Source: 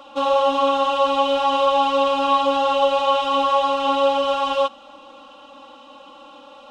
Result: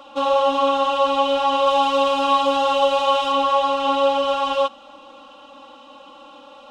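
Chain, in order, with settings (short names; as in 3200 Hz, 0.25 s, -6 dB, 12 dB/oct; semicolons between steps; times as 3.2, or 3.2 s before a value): 1.66–3.32 high shelf 5200 Hz +6.5 dB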